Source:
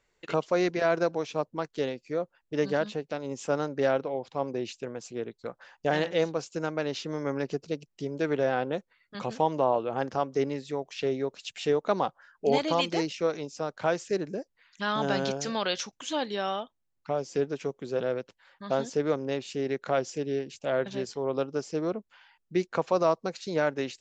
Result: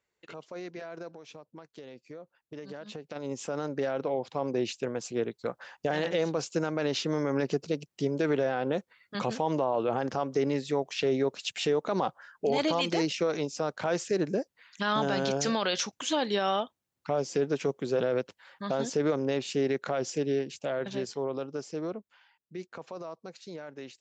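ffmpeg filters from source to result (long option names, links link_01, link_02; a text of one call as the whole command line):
ffmpeg -i in.wav -filter_complex "[0:a]asplit=3[link_01][link_02][link_03];[link_01]afade=type=out:start_time=1.14:duration=0.02[link_04];[link_02]acompressor=threshold=-34dB:ratio=12:attack=3.2:release=140:knee=1:detection=peak,afade=type=in:start_time=1.14:duration=0.02,afade=type=out:start_time=3.15:duration=0.02[link_05];[link_03]afade=type=in:start_time=3.15:duration=0.02[link_06];[link_04][link_05][link_06]amix=inputs=3:normalize=0,alimiter=limit=-23dB:level=0:latency=1:release=37,highpass=74,dynaudnorm=framelen=220:gausssize=31:maxgain=14dB,volume=-9dB" out.wav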